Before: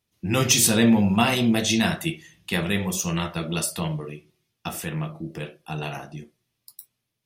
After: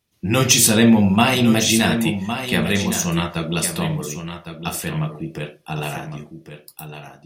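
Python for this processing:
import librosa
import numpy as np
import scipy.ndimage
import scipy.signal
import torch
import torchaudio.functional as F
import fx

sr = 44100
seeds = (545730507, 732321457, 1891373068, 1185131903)

y = x + 10.0 ** (-9.5 / 20.0) * np.pad(x, (int(1108 * sr / 1000.0), 0))[:len(x)]
y = F.gain(torch.from_numpy(y), 4.5).numpy()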